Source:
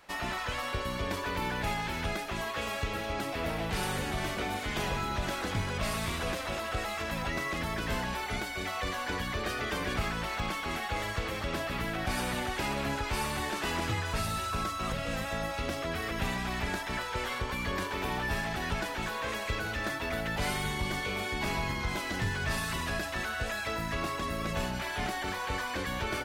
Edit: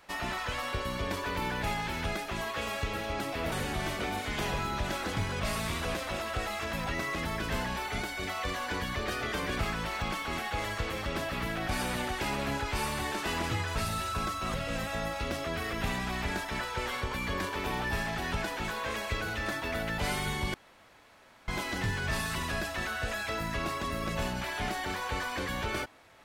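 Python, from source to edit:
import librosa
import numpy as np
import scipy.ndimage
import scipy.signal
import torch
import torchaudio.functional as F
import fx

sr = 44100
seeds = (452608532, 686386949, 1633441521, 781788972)

y = fx.edit(x, sr, fx.cut(start_s=3.52, length_s=0.38),
    fx.room_tone_fill(start_s=20.92, length_s=0.94), tone=tone)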